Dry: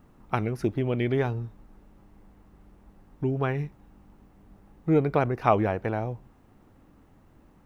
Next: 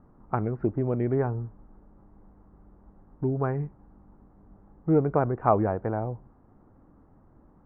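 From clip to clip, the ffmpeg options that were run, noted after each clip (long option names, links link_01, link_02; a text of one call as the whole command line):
ffmpeg -i in.wav -af "lowpass=frequency=1400:width=0.5412,lowpass=frequency=1400:width=1.3066" out.wav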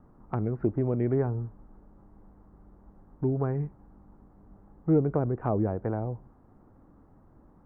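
ffmpeg -i in.wav -filter_complex "[0:a]acrossover=split=490[link_01][link_02];[link_02]acompressor=threshold=-36dB:ratio=5[link_03];[link_01][link_03]amix=inputs=2:normalize=0" out.wav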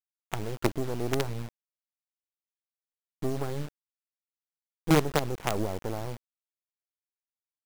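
ffmpeg -i in.wav -af "acrusher=bits=4:dc=4:mix=0:aa=0.000001" out.wav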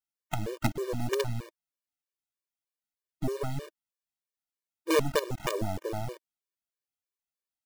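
ffmpeg -i in.wav -af "afftfilt=real='re*gt(sin(2*PI*3.2*pts/sr)*(1-2*mod(floor(b*sr/1024/310),2)),0)':imag='im*gt(sin(2*PI*3.2*pts/sr)*(1-2*mod(floor(b*sr/1024/310),2)),0)':win_size=1024:overlap=0.75,volume=2.5dB" out.wav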